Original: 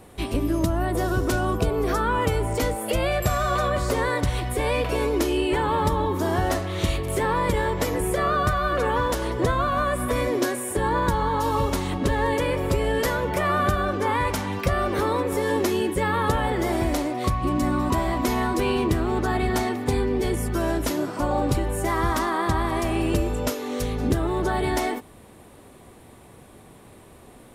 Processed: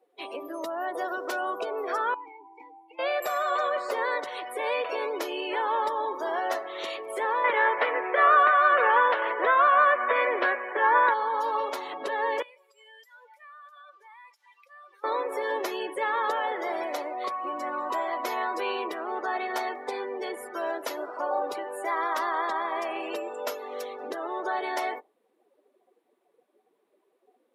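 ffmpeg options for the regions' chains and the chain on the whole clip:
-filter_complex "[0:a]asettb=1/sr,asplit=3[a][b][c];[a]atrim=end=2.144[d];[b]atrim=start=2.14:end=2.99,asetpts=PTS-STARTPTS,afade=t=in:d=0.004:c=qsin,afade=t=out:st=0.846:d=0.004:c=qsin,asplit=3[e][f][g];[e]bandpass=f=300:t=q:w=8,volume=0dB[h];[f]bandpass=f=870:t=q:w=8,volume=-6dB[i];[g]bandpass=f=2.24k:t=q:w=8,volume=-9dB[j];[h][i][j]amix=inputs=3:normalize=0,bass=f=250:g=-13,treble=f=4k:g=7[k];[c]atrim=start=2.986[l];[d][k]acrossfade=d=0.004:c1=hsin:c2=qsin[m];[m][l]acrossfade=d=0.004:c1=qsin:c2=hsin,asettb=1/sr,asplit=3[n][o][p];[n]atrim=end=7.444[q];[o]atrim=start=7.44:end=11.14,asetpts=PTS-STARTPTS,afade=t=in:d=0.004:c=qsin,afade=t=out:st=3.696:d=0.004:c=qsin,lowpass=2.6k,equalizer=f=1.9k:t=o:w=2.4:g=10.5[r];[p]atrim=start=11.136[s];[q][r]acrossfade=d=0.004:c1=hsin:c2=qsin[t];[t][s]acrossfade=d=0.004:c1=qsin:c2=hsin,asettb=1/sr,asplit=3[u][v][w];[u]atrim=end=12.424[x];[v]atrim=start=12.42:end=15.04,asetpts=PTS-STARTPTS,afade=t=in:d=0.004:c=qsin,afade=t=out:st=2.616:d=0.004:c=qsin,lowpass=11k,aderivative,acompressor=threshold=-40dB:ratio=12:attack=3.2:release=140:knee=1:detection=peak[y];[w]atrim=start=15.036[z];[x][y]acrossfade=d=0.004:c1=hsin:c2=qsin[aa];[aa][z]acrossfade=d=0.004:c1=qsin:c2=hsin,afftdn=nr=23:nf=-38,highpass=f=470:w=0.5412,highpass=f=470:w=1.3066,equalizer=f=8.6k:w=1.1:g=-8.5,volume=-2dB"

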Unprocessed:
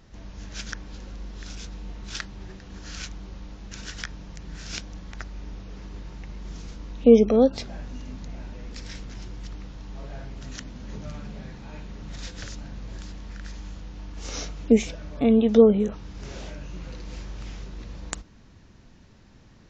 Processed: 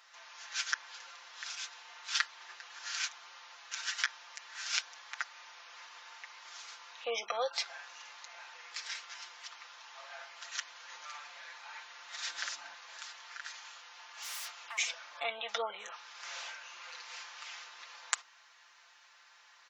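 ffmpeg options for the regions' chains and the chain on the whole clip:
-filter_complex "[0:a]asettb=1/sr,asplit=3[a][b][c];[a]atrim=end=12.274[d];[b]atrim=start=12.27:end=12.75,asetpts=PTS-STARTPTS,afade=t=in:d=0.004:c=qsin,afade=t=out:st=0.476:d=0.004:c=qsin,equalizer=f=220:w=0.49:g=12,bandreject=f=490:w=5.2[e];[c]atrim=start=12.746[f];[d][e]acrossfade=d=0.004:c1=hsin:c2=qsin[g];[g][f]acrossfade=d=0.004:c1=qsin:c2=hsin,asettb=1/sr,asplit=3[h][i][j];[h]atrim=end=13.484[k];[i]atrim=start=13.48:end=14.78,asetpts=PTS-STARTPTS,afade=t=in:d=0.004:c=qsin,afade=t=out:st=1.296:d=0.004:c=qsin,highpass=f=270:w=0.5412,highpass=f=270:w=1.3066,acompressor=threshold=-30dB:ratio=12:attack=3.2:release=140:knee=1:detection=peak,aeval=exprs='0.0126*(abs(mod(val(0)/0.0126+3,4)-2)-1)':c=same[l];[j]atrim=start=14.776[m];[k][l]acrossfade=d=0.004:c1=hsin:c2=qsin[n];[n][m]acrossfade=d=0.004:c1=qsin:c2=hsin,highpass=f=970:w=0.5412,highpass=f=970:w=1.3066,highshelf=f=4.8k:g=-4,aecho=1:1:5.8:0.69,volume=2.5dB"

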